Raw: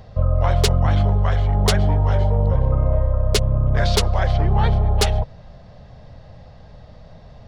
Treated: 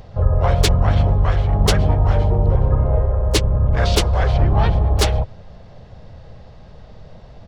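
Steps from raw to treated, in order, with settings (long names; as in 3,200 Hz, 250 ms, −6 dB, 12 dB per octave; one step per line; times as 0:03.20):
pitch-shifted copies added −5 semitones −8 dB, −4 semitones −6 dB, +5 semitones −12 dB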